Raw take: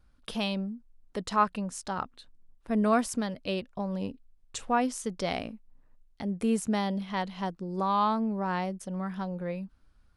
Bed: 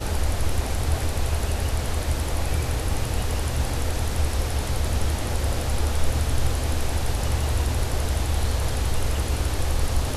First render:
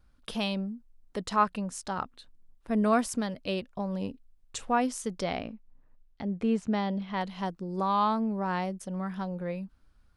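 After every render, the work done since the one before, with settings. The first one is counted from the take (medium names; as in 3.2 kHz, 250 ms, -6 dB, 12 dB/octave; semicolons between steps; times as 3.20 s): 5.24–7.21 s: distance through air 140 m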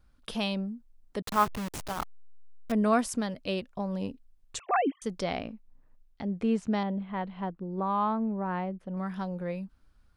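1.22–2.72 s: send-on-delta sampling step -30.5 dBFS; 4.59–5.02 s: formants replaced by sine waves; 6.83–8.97 s: distance through air 490 m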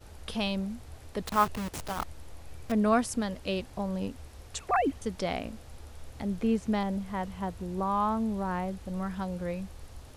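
add bed -23.5 dB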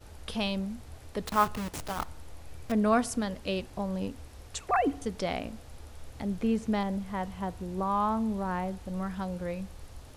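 FDN reverb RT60 0.68 s, high-frequency decay 0.5×, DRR 18.5 dB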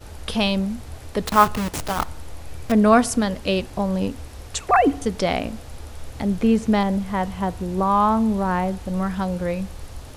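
trim +10 dB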